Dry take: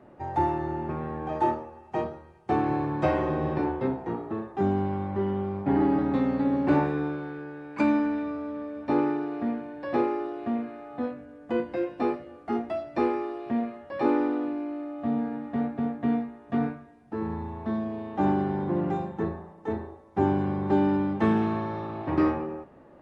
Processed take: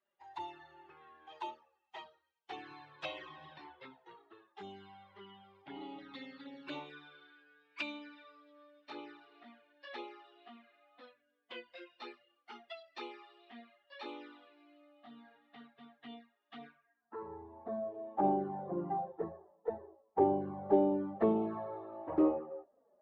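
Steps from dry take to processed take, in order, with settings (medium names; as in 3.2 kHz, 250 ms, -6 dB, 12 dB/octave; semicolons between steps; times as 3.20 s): expander on every frequency bin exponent 1.5; touch-sensitive flanger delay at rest 5.1 ms, full sweep at -23 dBFS; band-pass sweep 3.5 kHz -> 600 Hz, 16.72–17.31 s; Chebyshev shaper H 6 -39 dB, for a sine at -22.5 dBFS; trim +7.5 dB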